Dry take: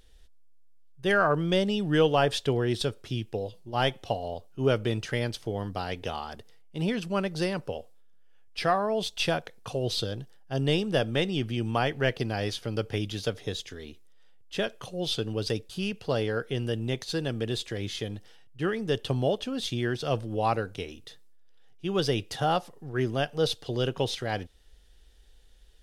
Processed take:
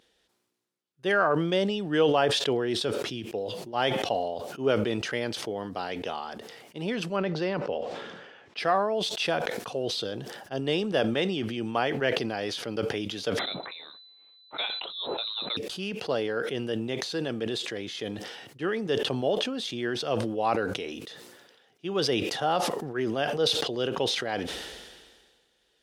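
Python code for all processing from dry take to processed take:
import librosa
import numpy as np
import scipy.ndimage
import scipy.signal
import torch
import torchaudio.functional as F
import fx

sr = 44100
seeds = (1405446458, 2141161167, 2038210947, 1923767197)

y = fx.chain(x, sr, fx.air_absorb(metres=150.0),
    fx.env_flatten(amount_pct=50), at=(7.16, 8.59))
y = fx.chain(y, sr, fx.low_shelf(hz=430.0, db=-6.0),
    fx.freq_invert(carrier_hz=4000), at=(13.39, 15.57))
y = scipy.signal.sosfilt(scipy.signal.butter(2, 240.0, 'highpass', fs=sr, output='sos'), y)
y = fx.high_shelf(y, sr, hz=7600.0, db=-10.5)
y = fx.sustainer(y, sr, db_per_s=36.0)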